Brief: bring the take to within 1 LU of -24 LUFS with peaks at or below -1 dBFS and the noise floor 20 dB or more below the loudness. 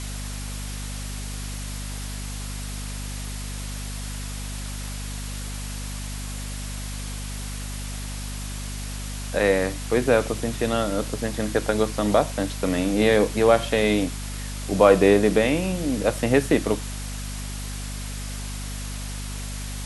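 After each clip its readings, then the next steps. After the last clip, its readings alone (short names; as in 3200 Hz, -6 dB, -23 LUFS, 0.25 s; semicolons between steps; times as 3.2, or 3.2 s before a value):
hum 50 Hz; harmonics up to 250 Hz; hum level -30 dBFS; noise floor -32 dBFS; noise floor target -46 dBFS; loudness -25.5 LUFS; peak -3.0 dBFS; loudness target -24.0 LUFS
-> notches 50/100/150/200/250 Hz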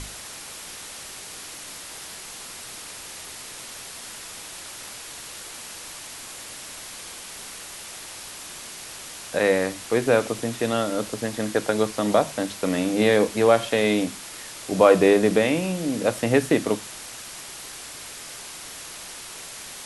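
hum none; noise floor -39 dBFS; noise floor target -43 dBFS
-> noise print and reduce 6 dB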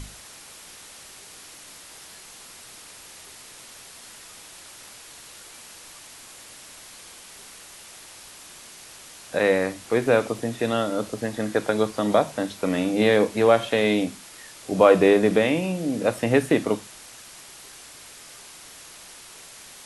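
noise floor -45 dBFS; loudness -22.0 LUFS; peak -3.0 dBFS; loudness target -24.0 LUFS
-> gain -2 dB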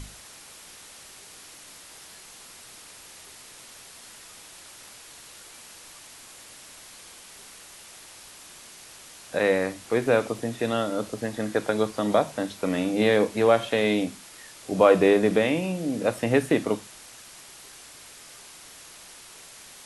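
loudness -24.0 LUFS; peak -5.0 dBFS; noise floor -47 dBFS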